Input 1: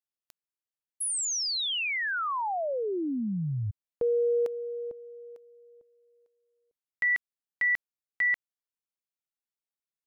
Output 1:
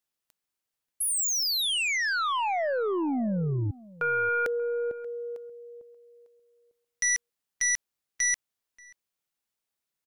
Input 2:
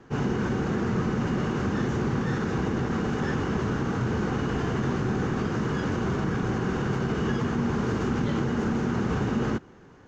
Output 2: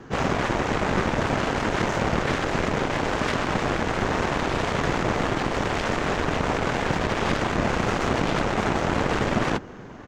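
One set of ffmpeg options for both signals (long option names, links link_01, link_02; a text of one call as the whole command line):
ffmpeg -i in.wav -filter_complex "[0:a]aeval=exprs='0.178*(cos(1*acos(clip(val(0)/0.178,-1,1)))-cos(1*PI/2))+0.0224*(cos(2*acos(clip(val(0)/0.178,-1,1)))-cos(2*PI/2))+0.00126*(cos(4*acos(clip(val(0)/0.178,-1,1)))-cos(4*PI/2))+0.0891*(cos(7*acos(clip(val(0)/0.178,-1,1)))-cos(7*PI/2))':channel_layout=same,asplit=2[link_01][link_02];[link_02]adelay=583.1,volume=-21dB,highshelf=frequency=4000:gain=-13.1[link_03];[link_01][link_03]amix=inputs=2:normalize=0" out.wav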